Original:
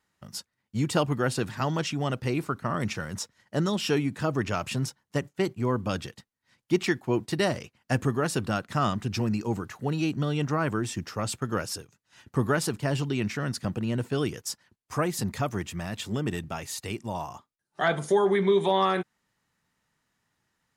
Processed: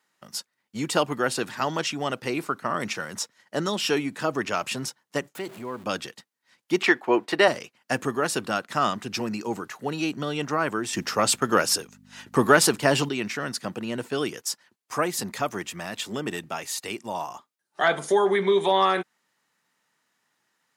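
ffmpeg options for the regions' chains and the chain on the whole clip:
-filter_complex "[0:a]asettb=1/sr,asplit=3[s0][s1][s2];[s0]atrim=end=5.354[s3];[s1]atrim=start=5.35:end=5.84,asetpts=PTS-STARTPTS,afade=t=in:d=0.004:c=qsin,afade=t=out:st=0.486:d=0.004:c=qsin,aeval=exprs='val(0)+0.5*0.0106*sgn(val(0))':c=same,acompressor=threshold=0.0158:ratio=2:attack=3.2:release=140:knee=1:detection=peak,equalizer=f=5700:t=o:w=0.43:g=-5[s4];[s2]atrim=start=5.836[s5];[s3][s4]acrossfade=d=0.004:c1=hsin:c2=qsin[s6];[s6][s5]acrossfade=d=0.004:c1=qsin:c2=hsin,asettb=1/sr,asplit=3[s7][s8][s9];[s7]atrim=end=6.824[s10];[s8]atrim=start=6.82:end=7.48,asetpts=PTS-STARTPTS,afade=t=in:d=0.004:c=qsin,afade=t=out:st=0.656:d=0.004:c=qsin,highpass=47,bass=f=250:g=-14,treble=f=4000:g=-14,acontrast=77[s11];[s9]atrim=start=7.476[s12];[s10][s11]acrossfade=d=0.004:c1=hsin:c2=qsin[s13];[s13][s12]acrossfade=d=0.004:c1=qsin:c2=hsin,asettb=1/sr,asplit=3[s14][s15][s16];[s14]atrim=end=10.934[s17];[s15]atrim=start=10.93:end=13.09,asetpts=PTS-STARTPTS,afade=t=in:d=0.004:c=qsin,afade=t=out:st=2.156:d=0.004:c=qsin,acontrast=79,aeval=exprs='val(0)+0.00891*(sin(2*PI*50*n/s)+sin(2*PI*2*50*n/s)/2+sin(2*PI*3*50*n/s)/3+sin(2*PI*4*50*n/s)/4+sin(2*PI*5*50*n/s)/5)':c=same[s18];[s16]atrim=start=13.086[s19];[s17][s18]acrossfade=d=0.004:c1=hsin:c2=qsin[s20];[s20][s19]acrossfade=d=0.004:c1=qsin:c2=hsin,highpass=210,lowshelf=f=380:g=-6,volume=1.68"

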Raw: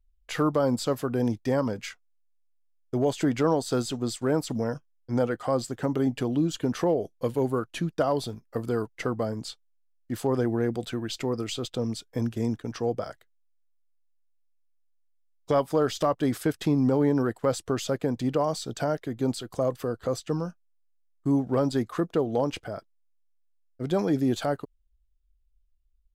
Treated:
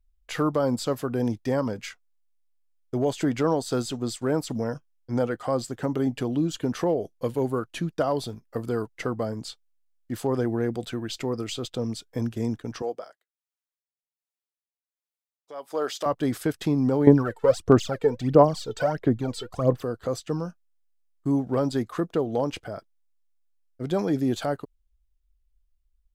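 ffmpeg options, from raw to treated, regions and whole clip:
-filter_complex "[0:a]asettb=1/sr,asplit=3[s0][s1][s2];[s0]atrim=end=12.824[s3];[s1]atrim=start=12.82:end=16.06,asetpts=PTS-STARTPTS,afade=t=in:d=0.004:c=qsin,afade=t=out:st=3.236:d=0.004:c=qsin,highpass=420,tremolo=f=1.3:d=0.84[s4];[s2]atrim=start=16.056[s5];[s3][s4]acrossfade=d=0.004:c1=hsin:c2=qsin[s6];[s6][s5]acrossfade=d=0.004:c1=qsin:c2=hsin,asettb=1/sr,asplit=3[s7][s8][s9];[s7]atrim=end=17.074[s10];[s8]atrim=start=17.07:end=19.82,asetpts=PTS-STARTPTS,afade=t=in:d=0.004:c=qsin,afade=t=out:st=2.746:d=0.004:c=qsin,highshelf=f=5700:g=-10,aphaser=in_gain=1:out_gain=1:delay=2.3:decay=0.74:speed=1.5:type=sinusoidal[s11];[s9]atrim=start=19.816[s12];[s10][s11]acrossfade=d=0.004:c1=hsin:c2=qsin[s13];[s13][s12]acrossfade=d=0.004:c1=qsin:c2=hsin"

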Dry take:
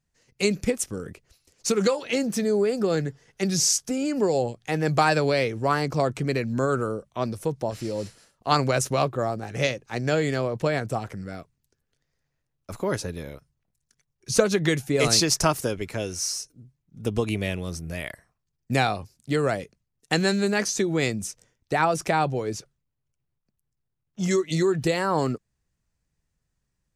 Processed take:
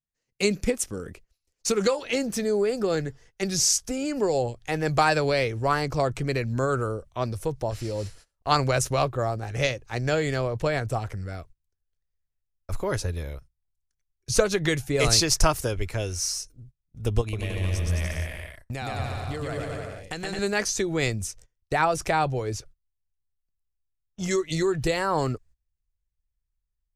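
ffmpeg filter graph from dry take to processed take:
-filter_complex "[0:a]asettb=1/sr,asplit=3[s0][s1][s2];[s0]atrim=end=17.214[s3];[s1]atrim=start=17.21:end=20.39,asetpts=PTS-STARTPTS,afade=t=in:d=0.004:c=qsin,afade=t=out:st=3.176:d=0.004:c=qsin,acompressor=threshold=0.0355:ratio=6:attack=3.2:release=140:knee=1:detection=peak,aecho=1:1:120|216|292.8|354.2|403.4|442.7|474.2:0.794|0.631|0.501|0.398|0.316|0.251|0.2,atrim=end_sample=140238[s4];[s2]atrim=start=20.386[s5];[s3][s4]acrossfade=d=0.004:c1=hsin:c2=qsin[s6];[s6][s5]acrossfade=d=0.004:c1=qsin:c2=hsin,agate=range=0.126:threshold=0.00316:ratio=16:detection=peak,asubboost=boost=11.5:cutoff=56"

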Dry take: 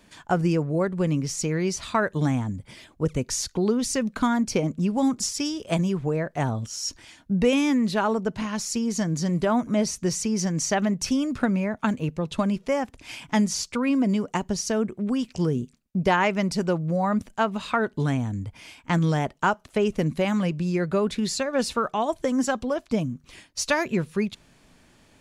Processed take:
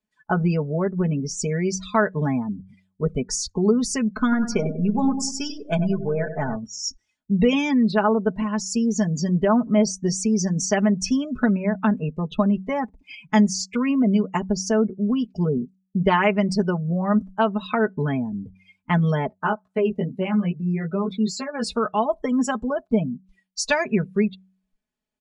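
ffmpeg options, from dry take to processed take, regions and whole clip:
-filter_complex "[0:a]asettb=1/sr,asplit=3[s0][s1][s2];[s0]atrim=end=4.214[s3];[s1]atrim=start=4.21:end=6.56,asetpts=PTS-STARTPTS,afade=t=in:d=0.004:c=qsin,afade=t=out:st=2.346:d=0.004:c=qsin,aeval=exprs='if(lt(val(0),0),0.708*val(0),val(0))':c=same,equalizer=f=1500:w=6.7:g=7,asplit=2[s4][s5];[s5]adelay=96,lowpass=f=4700:p=1,volume=0.355,asplit=2[s6][s7];[s7]adelay=96,lowpass=f=4700:p=1,volume=0.5,asplit=2[s8][s9];[s9]adelay=96,lowpass=f=4700:p=1,volume=0.5,asplit=2[s10][s11];[s11]adelay=96,lowpass=f=4700:p=1,volume=0.5,asplit=2[s12][s13];[s13]adelay=96,lowpass=f=4700:p=1,volume=0.5,asplit=2[s14][s15];[s15]adelay=96,lowpass=f=4700:p=1,volume=0.5[s16];[s4][s6][s8][s10][s12][s14][s16]amix=inputs=7:normalize=0,atrim=end_sample=103635[s17];[s2]atrim=start=6.556[s18];[s3][s17]acrossfade=d=0.004:c1=hsin:c2=qsin[s19];[s19][s18]acrossfade=d=0.004:c1=qsin:c2=hsin,asettb=1/sr,asplit=3[s20][s21][s22];[s20]atrim=end=19.304[s23];[s21]atrim=start=19.3:end=21.64,asetpts=PTS-STARTPTS,afade=t=in:d=0.004:c=qsin,afade=t=out:st=2.336:d=0.004:c=qsin,highpass=66,flanger=delay=15.5:depth=3:speed=2.3[s24];[s22]atrim=start=21.636[s25];[s23][s24]acrossfade=d=0.004:c1=hsin:c2=qsin[s26];[s26][s25]acrossfade=d=0.004:c1=qsin:c2=hsin,afftdn=nr=33:nf=-35,aecho=1:1:4.7:0.8,bandreject=f=94.28:t=h:w=4,bandreject=f=188.56:t=h:w=4"

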